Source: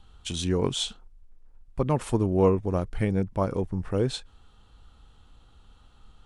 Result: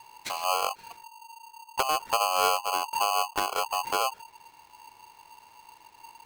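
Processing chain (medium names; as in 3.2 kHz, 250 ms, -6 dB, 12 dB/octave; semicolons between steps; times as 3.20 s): low-pass that closes with the level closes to 300 Hz, closed at -22 dBFS; polarity switched at an audio rate 920 Hz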